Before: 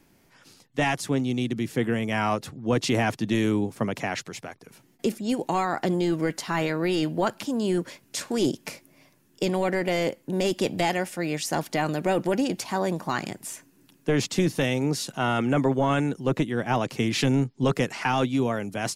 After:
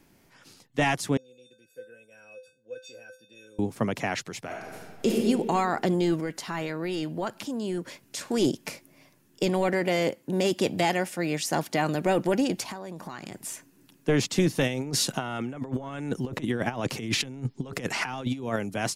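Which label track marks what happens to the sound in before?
1.170000	3.590000	feedback comb 510 Hz, decay 0.28 s, harmonics odd, mix 100%
4.450000	5.180000	reverb throw, RT60 1.6 s, DRR -3.5 dB
6.200000	8.260000	compression 1.5:1, threshold -37 dBFS
9.730000	11.950000	high-pass 75 Hz
12.710000	13.330000	compression 12:1, threshold -33 dBFS
14.670000	18.560000	compressor with a negative ratio -29 dBFS, ratio -0.5

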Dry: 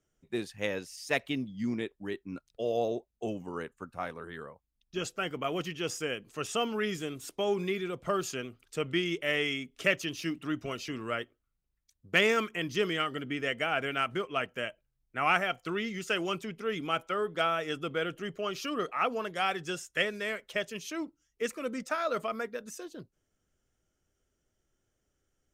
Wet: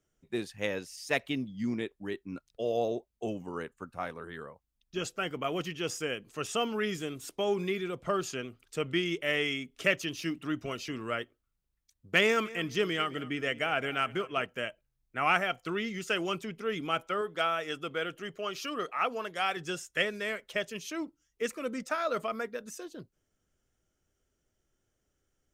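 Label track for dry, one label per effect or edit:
8.030000	8.480000	treble shelf 12 kHz -9.5 dB
12.240000	14.450000	feedback delay 211 ms, feedback 26%, level -18 dB
17.210000	19.570000	bass shelf 360 Hz -6.5 dB

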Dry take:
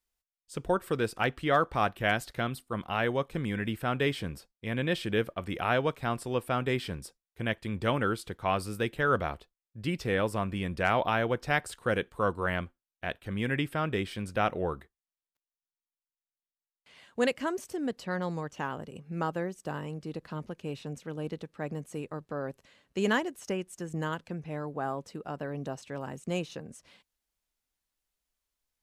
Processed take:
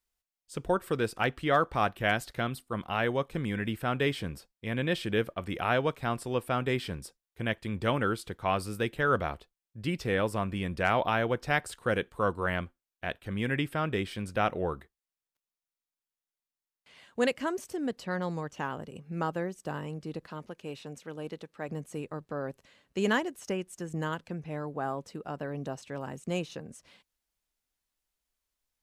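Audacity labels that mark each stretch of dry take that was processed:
20.260000	21.690000	bass shelf 220 Hz -9.5 dB

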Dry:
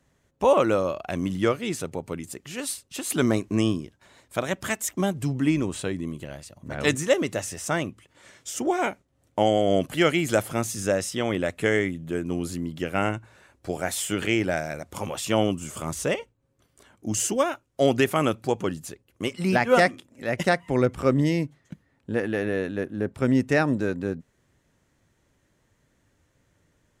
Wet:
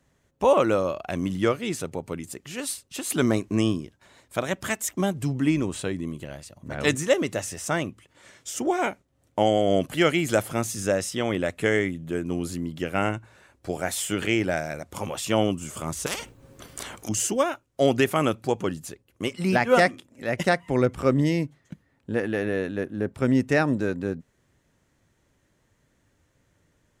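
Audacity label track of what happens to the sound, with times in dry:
16.060000	17.090000	spectrum-flattening compressor 4:1

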